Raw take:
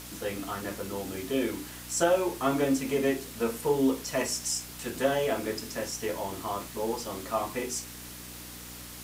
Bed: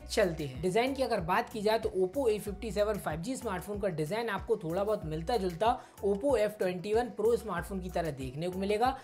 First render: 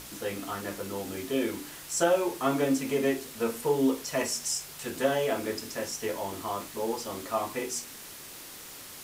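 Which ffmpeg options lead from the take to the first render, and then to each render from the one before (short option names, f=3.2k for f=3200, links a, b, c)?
-af "bandreject=f=60:t=h:w=4,bandreject=f=120:t=h:w=4,bandreject=f=180:t=h:w=4,bandreject=f=240:t=h:w=4,bandreject=f=300:t=h:w=4"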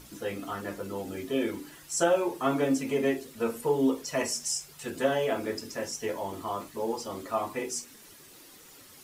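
-af "afftdn=nr=10:nf=-45"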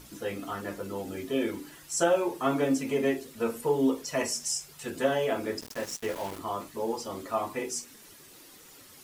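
-filter_complex "[0:a]asettb=1/sr,asplit=3[a][b][c];[a]atrim=end=5.614[d];[b]atrim=start=5.61:end=6.39,asetpts=PTS-STARTPTS,afade=t=in:d=0.004:c=qsin,afade=t=out:st=0.776:d=0.004:c=qsin,aeval=exprs='val(0)*gte(abs(val(0)),0.0133)':c=same[e];[c]atrim=start=6.386[f];[d][e]acrossfade=d=0.004:c1=hsin:c2=qsin[g];[g][f]acrossfade=d=0.004:c1=qsin:c2=hsin"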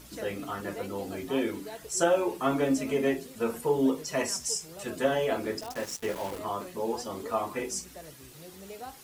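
-filter_complex "[1:a]volume=-14dB[a];[0:a][a]amix=inputs=2:normalize=0"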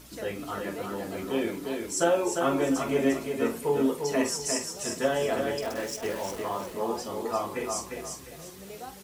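-filter_complex "[0:a]asplit=2[a][b];[b]adelay=47,volume=-12.5dB[c];[a][c]amix=inputs=2:normalize=0,aecho=1:1:351|702|1053|1404:0.562|0.169|0.0506|0.0152"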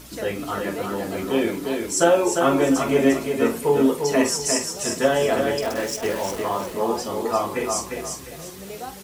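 -af "volume=7dB"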